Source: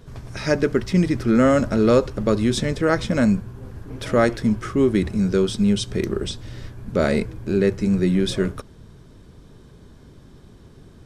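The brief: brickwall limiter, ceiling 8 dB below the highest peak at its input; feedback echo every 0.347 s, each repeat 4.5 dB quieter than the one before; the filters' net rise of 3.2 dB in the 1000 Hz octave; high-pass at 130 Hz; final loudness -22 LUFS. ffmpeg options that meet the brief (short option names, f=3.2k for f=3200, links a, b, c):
-af "highpass=130,equalizer=f=1k:t=o:g=4.5,alimiter=limit=-10.5dB:level=0:latency=1,aecho=1:1:347|694|1041|1388|1735|2082|2429|2776|3123:0.596|0.357|0.214|0.129|0.0772|0.0463|0.0278|0.0167|0.01,volume=-1dB"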